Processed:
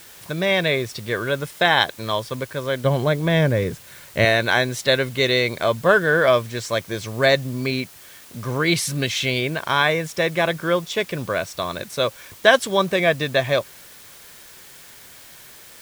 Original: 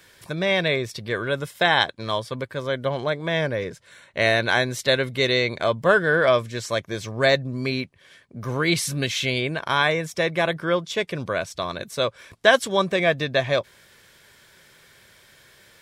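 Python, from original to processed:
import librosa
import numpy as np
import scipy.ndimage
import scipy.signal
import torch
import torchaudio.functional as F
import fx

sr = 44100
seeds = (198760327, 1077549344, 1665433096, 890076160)

p1 = fx.low_shelf(x, sr, hz=270.0, db=11.0, at=(2.84, 4.25))
p2 = fx.quant_dither(p1, sr, seeds[0], bits=6, dither='triangular')
p3 = p1 + F.gain(torch.from_numpy(p2), -8.0).numpy()
y = F.gain(torch.from_numpy(p3), -1.0).numpy()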